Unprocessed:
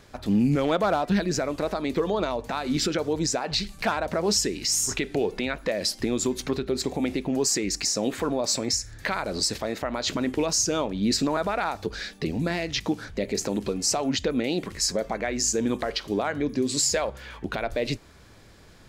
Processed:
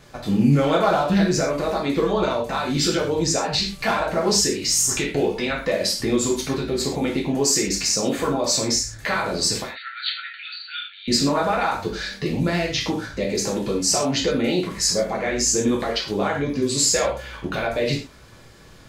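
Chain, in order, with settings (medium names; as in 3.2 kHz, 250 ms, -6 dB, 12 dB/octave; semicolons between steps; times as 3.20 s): 9.63–11.08 s: brick-wall FIR band-pass 1.3–4.6 kHz; gated-style reverb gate 150 ms falling, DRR -3.5 dB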